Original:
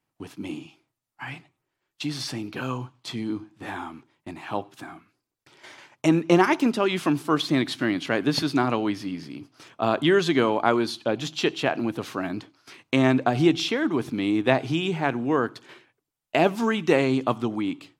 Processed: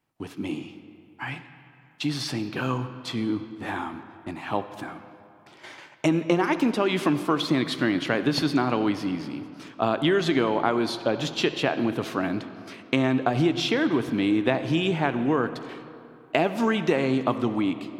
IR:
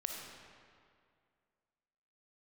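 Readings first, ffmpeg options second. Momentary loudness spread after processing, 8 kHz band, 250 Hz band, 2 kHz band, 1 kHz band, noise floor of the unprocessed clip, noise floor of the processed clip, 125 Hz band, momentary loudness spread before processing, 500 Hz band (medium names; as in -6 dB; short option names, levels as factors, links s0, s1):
15 LU, -1.5 dB, 0.0 dB, -1.0 dB, -1.0 dB, -83 dBFS, -53 dBFS, 0.0 dB, 17 LU, -1.0 dB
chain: -filter_complex "[0:a]acompressor=threshold=0.0891:ratio=6,asplit=2[s0][s1];[1:a]atrim=start_sample=2205,asetrate=35721,aresample=44100,lowpass=4900[s2];[s1][s2]afir=irnorm=-1:irlink=0,volume=0.422[s3];[s0][s3]amix=inputs=2:normalize=0"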